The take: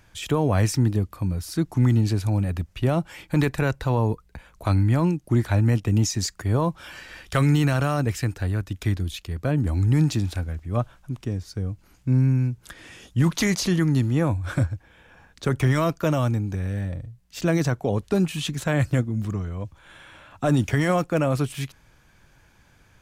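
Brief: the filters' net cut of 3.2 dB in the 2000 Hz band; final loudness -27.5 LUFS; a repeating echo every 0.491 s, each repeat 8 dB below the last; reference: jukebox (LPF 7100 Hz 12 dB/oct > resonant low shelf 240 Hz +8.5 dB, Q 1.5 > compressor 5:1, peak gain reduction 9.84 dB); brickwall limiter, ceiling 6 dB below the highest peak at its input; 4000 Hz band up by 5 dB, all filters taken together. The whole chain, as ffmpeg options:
-af "equalizer=f=2k:t=o:g=-6,equalizer=f=4k:t=o:g=8.5,alimiter=limit=-16dB:level=0:latency=1,lowpass=7.1k,lowshelf=f=240:t=q:w=1.5:g=8.5,aecho=1:1:491|982|1473|1964|2455:0.398|0.159|0.0637|0.0255|0.0102,acompressor=threshold=-19dB:ratio=5,volume=-4dB"

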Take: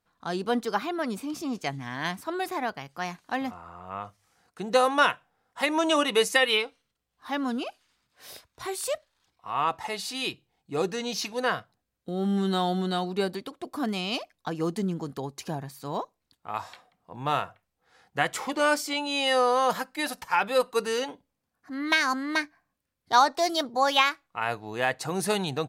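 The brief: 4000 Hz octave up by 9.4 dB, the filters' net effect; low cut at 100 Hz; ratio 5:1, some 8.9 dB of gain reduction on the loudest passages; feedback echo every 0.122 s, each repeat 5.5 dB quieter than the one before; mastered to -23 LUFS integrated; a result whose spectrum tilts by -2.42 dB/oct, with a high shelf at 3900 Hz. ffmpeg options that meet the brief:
-af "highpass=100,highshelf=f=3.9k:g=8,equalizer=f=4k:t=o:g=7.5,acompressor=threshold=-22dB:ratio=5,aecho=1:1:122|244|366|488|610|732|854:0.531|0.281|0.149|0.079|0.0419|0.0222|0.0118,volume=4dB"

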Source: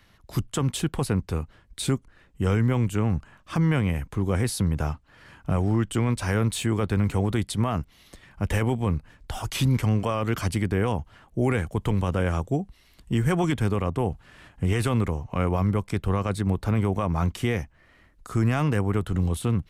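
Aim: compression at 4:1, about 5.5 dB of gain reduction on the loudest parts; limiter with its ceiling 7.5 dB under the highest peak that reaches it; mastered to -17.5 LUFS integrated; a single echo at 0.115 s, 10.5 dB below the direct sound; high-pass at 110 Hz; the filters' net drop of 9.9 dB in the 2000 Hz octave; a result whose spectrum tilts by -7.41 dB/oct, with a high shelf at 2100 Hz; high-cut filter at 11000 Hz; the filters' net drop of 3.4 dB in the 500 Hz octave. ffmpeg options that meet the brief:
-af "highpass=110,lowpass=11k,equalizer=f=500:t=o:g=-3.5,equalizer=f=2k:t=o:g=-8.5,highshelf=f=2.1k:g=-8,acompressor=threshold=-27dB:ratio=4,alimiter=level_in=1.5dB:limit=-24dB:level=0:latency=1,volume=-1.5dB,aecho=1:1:115:0.299,volume=18.5dB"

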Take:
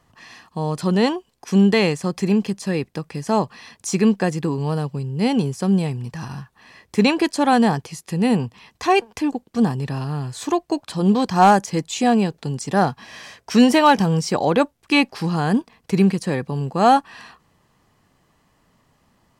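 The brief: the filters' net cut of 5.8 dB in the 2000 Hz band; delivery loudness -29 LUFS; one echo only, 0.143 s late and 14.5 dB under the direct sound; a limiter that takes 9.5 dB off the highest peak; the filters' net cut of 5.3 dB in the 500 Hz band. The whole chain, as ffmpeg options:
-af "equalizer=f=500:t=o:g=-6.5,equalizer=f=2k:t=o:g=-7.5,alimiter=limit=-15.5dB:level=0:latency=1,aecho=1:1:143:0.188,volume=-3.5dB"

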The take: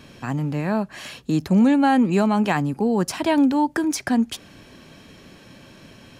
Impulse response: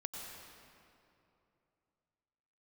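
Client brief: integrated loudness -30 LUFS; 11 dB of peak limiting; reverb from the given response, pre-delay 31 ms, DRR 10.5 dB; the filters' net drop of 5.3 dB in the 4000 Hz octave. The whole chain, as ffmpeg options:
-filter_complex "[0:a]equalizer=f=4k:t=o:g=-7.5,alimiter=limit=-20dB:level=0:latency=1,asplit=2[a][b];[1:a]atrim=start_sample=2205,adelay=31[c];[b][c]afir=irnorm=-1:irlink=0,volume=-10dB[d];[a][d]amix=inputs=2:normalize=0,volume=-2dB"

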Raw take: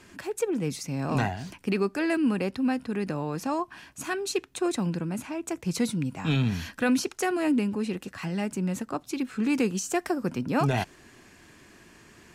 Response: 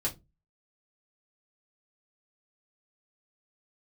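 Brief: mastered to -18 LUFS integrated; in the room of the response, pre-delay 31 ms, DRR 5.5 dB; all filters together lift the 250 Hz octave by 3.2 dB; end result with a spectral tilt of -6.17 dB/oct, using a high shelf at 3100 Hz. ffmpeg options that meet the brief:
-filter_complex "[0:a]equalizer=f=250:t=o:g=4,highshelf=f=3.1k:g=-6,asplit=2[a][b];[1:a]atrim=start_sample=2205,adelay=31[c];[b][c]afir=irnorm=-1:irlink=0,volume=-10dB[d];[a][d]amix=inputs=2:normalize=0,volume=7dB"

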